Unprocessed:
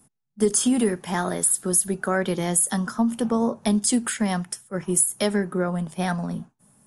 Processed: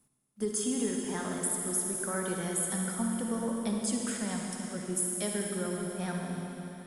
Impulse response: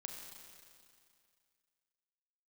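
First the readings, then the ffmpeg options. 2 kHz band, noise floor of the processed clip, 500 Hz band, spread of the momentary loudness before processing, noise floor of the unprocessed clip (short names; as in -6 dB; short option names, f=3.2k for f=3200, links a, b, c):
-9.0 dB, -69 dBFS, -9.5 dB, 7 LU, -72 dBFS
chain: -filter_complex "[0:a]equalizer=f=770:w=4.5:g=-4,acrusher=bits=10:mix=0:aa=0.000001[a];[1:a]atrim=start_sample=2205,asetrate=27783,aresample=44100[b];[a][b]afir=irnorm=-1:irlink=0,volume=-9dB"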